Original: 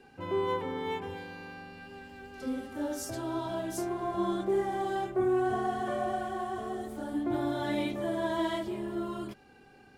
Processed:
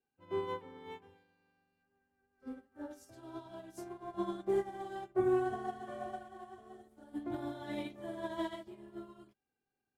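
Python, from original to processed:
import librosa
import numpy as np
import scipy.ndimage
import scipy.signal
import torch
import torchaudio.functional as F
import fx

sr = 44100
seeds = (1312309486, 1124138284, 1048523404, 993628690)

y = fx.high_shelf_res(x, sr, hz=2200.0, db=-6.5, q=1.5, at=(1.83, 2.91))
y = fx.upward_expand(y, sr, threshold_db=-46.0, expansion=2.5)
y = y * librosa.db_to_amplitude(-1.0)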